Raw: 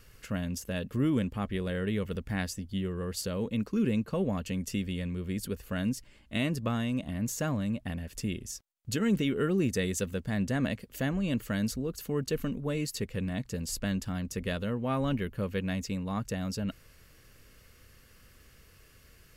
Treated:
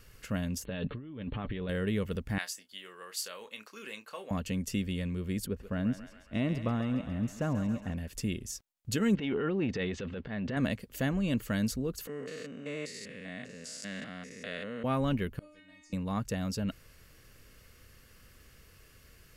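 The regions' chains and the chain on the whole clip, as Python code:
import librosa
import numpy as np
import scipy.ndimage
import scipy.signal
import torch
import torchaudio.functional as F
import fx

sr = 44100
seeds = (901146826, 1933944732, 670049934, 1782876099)

y = fx.chain(x, sr, fx.comb(ms=6.9, depth=0.34),
    fx.over_compress(threshold_db=-38.0, ratio=-1.0),
    fx.brickwall_lowpass(high_hz=4400.0), at=(0.65, 1.69))
y = fx.chain(y, sr, fx.highpass(hz=1000.0, slope=12),
    fx.doubler(ms=28.0, db=-10.0), at=(2.38, 4.31))
y = fx.chain(y, sr, fx.lowpass(hz=1200.0, slope=6),
    fx.echo_thinned(ms=136, feedback_pct=70, hz=670.0, wet_db=-7.5), at=(5.46, 7.95))
y = fx.chain(y, sr, fx.lowpass(hz=3500.0, slope=24),
    fx.transient(attack_db=-9, sustain_db=8),
    fx.low_shelf(hz=150.0, db=-10.5), at=(9.15, 10.57))
y = fx.chain(y, sr, fx.spec_steps(hold_ms=200),
    fx.cabinet(low_hz=300.0, low_slope=12, high_hz=8900.0, hz=(340.0, 910.0, 2000.0), db=(-9, -8, 8)), at=(12.07, 14.84))
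y = fx.chain(y, sr, fx.lowpass_res(hz=7800.0, q=2.2),
    fx.stiff_resonator(f0_hz=300.0, decay_s=0.77, stiffness=0.002),
    fx.band_squash(depth_pct=40), at=(15.39, 15.93))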